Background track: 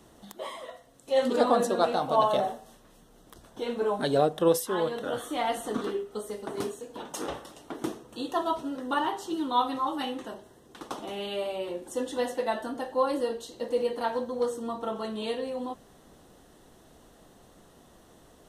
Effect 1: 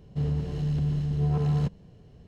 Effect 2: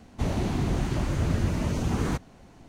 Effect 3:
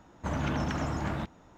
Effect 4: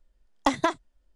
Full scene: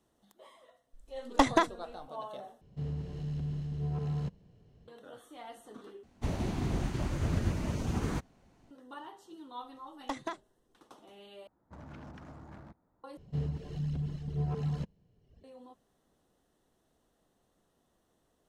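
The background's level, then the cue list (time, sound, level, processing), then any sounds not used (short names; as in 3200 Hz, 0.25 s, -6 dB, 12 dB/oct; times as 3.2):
background track -18.5 dB
0.93 add 4 -1.5 dB + low shelf 110 Hz +10.5 dB
2.61 replace with 1 -9 dB
6.03 replace with 2 -4 dB + upward expander, over -38 dBFS
9.63 add 4 -14 dB
11.47 replace with 3 -17.5 dB + Wiener smoothing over 15 samples
13.17 replace with 1 -5 dB + reverb removal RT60 1.2 s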